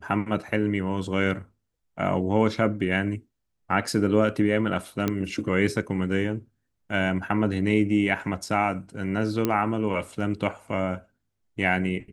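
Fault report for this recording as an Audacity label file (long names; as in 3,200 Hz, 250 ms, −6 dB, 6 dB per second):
5.080000	5.080000	click −11 dBFS
9.450000	9.450000	click −10 dBFS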